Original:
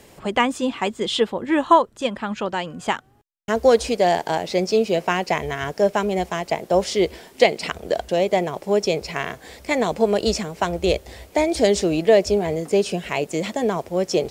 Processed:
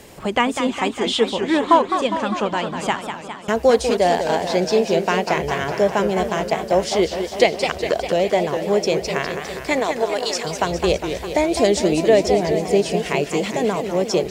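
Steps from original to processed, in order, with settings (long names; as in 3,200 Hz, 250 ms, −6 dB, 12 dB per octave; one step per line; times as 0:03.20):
0:09.79–0:10.44: high-pass filter 350 Hz → 1,000 Hz 12 dB per octave
in parallel at 0 dB: downward compressor, threshold −30 dBFS, peak gain reduction 19.5 dB
on the sum: feedback echo with a swinging delay time 203 ms, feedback 67%, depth 213 cents, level −8 dB
level −1 dB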